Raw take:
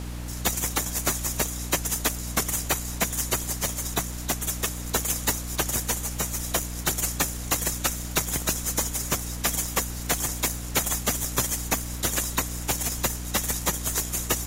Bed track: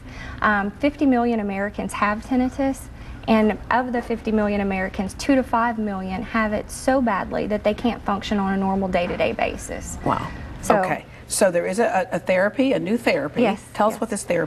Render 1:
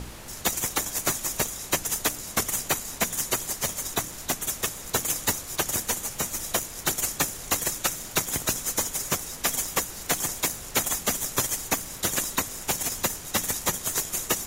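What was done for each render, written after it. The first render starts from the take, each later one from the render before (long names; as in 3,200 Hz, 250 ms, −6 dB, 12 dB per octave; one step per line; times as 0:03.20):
hum removal 60 Hz, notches 5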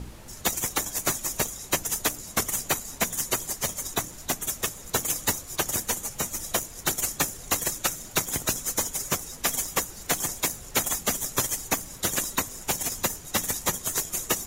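broadband denoise 7 dB, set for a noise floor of −40 dBFS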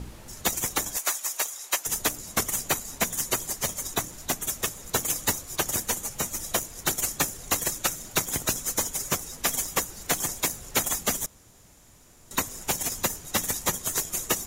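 0:00.97–0:01.86: high-pass filter 760 Hz
0:11.26–0:12.31: fill with room tone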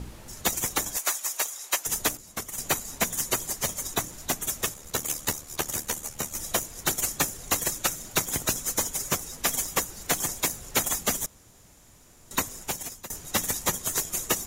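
0:02.17–0:02.58: clip gain −8.5 dB
0:04.74–0:06.36: amplitude modulation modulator 75 Hz, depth 45%
0:12.42–0:13.10: fade out, to −18.5 dB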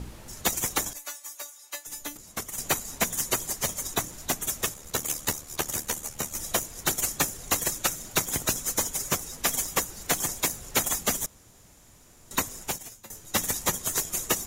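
0:00.93–0:02.16: tuned comb filter 290 Hz, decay 0.18 s, mix 90%
0:12.78–0:13.34: tuned comb filter 110 Hz, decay 0.24 s, mix 70%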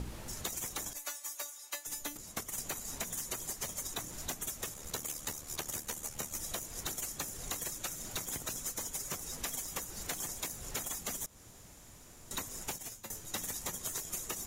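brickwall limiter −18 dBFS, peak gain reduction 8.5 dB
downward compressor, threshold −36 dBFS, peak gain reduction 10.5 dB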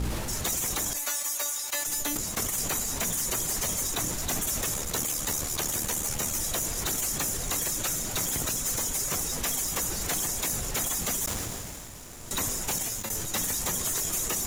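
leveller curve on the samples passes 3
level that may fall only so fast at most 22 dB per second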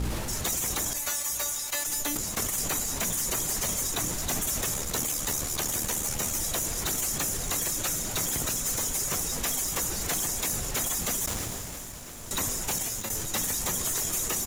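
repeating echo 659 ms, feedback 57%, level −16 dB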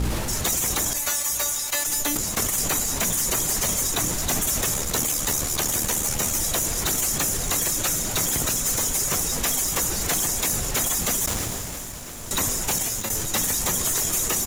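level +5.5 dB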